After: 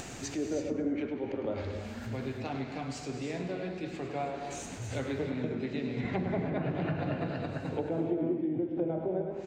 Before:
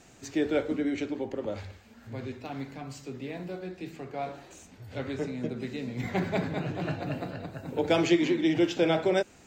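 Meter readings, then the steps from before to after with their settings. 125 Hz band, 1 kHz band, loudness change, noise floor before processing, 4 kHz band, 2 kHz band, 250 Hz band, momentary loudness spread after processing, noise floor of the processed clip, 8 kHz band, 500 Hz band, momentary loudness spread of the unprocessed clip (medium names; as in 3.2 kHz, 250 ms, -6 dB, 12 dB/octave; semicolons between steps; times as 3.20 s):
0.0 dB, -3.0 dB, -4.0 dB, -55 dBFS, -9.0 dB, -6.0 dB, -3.5 dB, 6 LU, -42 dBFS, +1.0 dB, -4.0 dB, 16 LU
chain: low-pass that closes with the level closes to 550 Hz, closed at -23 dBFS; upward compressor, threshold -32 dBFS; feedback delay 104 ms, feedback 44%, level -9 dB; compression, threshold -28 dBFS, peak gain reduction 9.5 dB; vibrato 4.1 Hz 23 cents; gated-style reverb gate 360 ms rising, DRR 6 dB; attacks held to a fixed rise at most 190 dB/s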